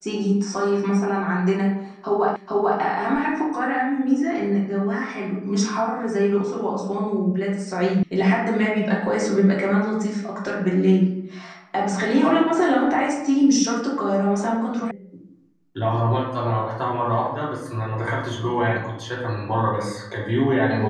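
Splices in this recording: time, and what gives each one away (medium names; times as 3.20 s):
2.36 s: repeat of the last 0.44 s
8.03 s: sound stops dead
14.91 s: sound stops dead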